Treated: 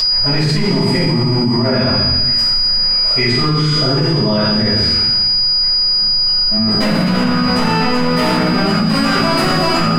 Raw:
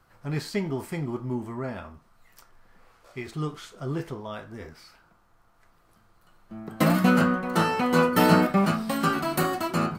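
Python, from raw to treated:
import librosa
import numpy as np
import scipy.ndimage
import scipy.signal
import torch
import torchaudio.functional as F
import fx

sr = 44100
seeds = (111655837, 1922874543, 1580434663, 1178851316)

p1 = scipy.signal.sosfilt(scipy.signal.butter(2, 8700.0, 'lowpass', fs=sr, output='sos'), x)
p2 = fx.rider(p1, sr, range_db=4, speed_s=0.5)
p3 = p1 + F.gain(torch.from_numpy(p2), 2.5).numpy()
p4 = np.clip(p3, -10.0 ** (-15.5 / 20.0), 10.0 ** (-15.5 / 20.0))
p5 = p4 + 10.0 ** (-27.0 / 20.0) * np.sin(2.0 * np.pi * 4900.0 * np.arange(len(p4)) / sr)
p6 = fx.comb_fb(p5, sr, f0_hz=210.0, decay_s=0.83, harmonics='all', damping=0.0, mix_pct=60)
p7 = p6 + fx.echo_wet_highpass(p6, sr, ms=85, feedback_pct=77, hz=2000.0, wet_db=-10.0, dry=0)
p8 = fx.room_shoebox(p7, sr, seeds[0], volume_m3=340.0, walls='mixed', distance_m=5.8)
p9 = fx.env_flatten(p8, sr, amount_pct=100)
y = F.gain(torch.from_numpy(p9), -7.5).numpy()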